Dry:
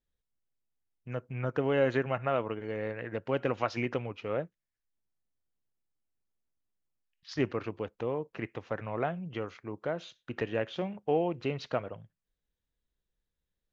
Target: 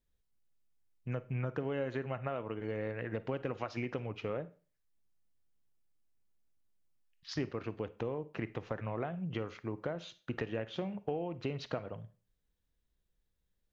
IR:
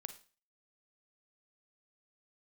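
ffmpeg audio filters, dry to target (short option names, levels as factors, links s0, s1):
-filter_complex "[0:a]acompressor=threshold=0.0158:ratio=5,asplit=2[s0][s1];[1:a]atrim=start_sample=2205,lowshelf=f=350:g=8[s2];[s1][s2]afir=irnorm=-1:irlink=0,volume=1.26[s3];[s0][s3]amix=inputs=2:normalize=0,volume=0.631"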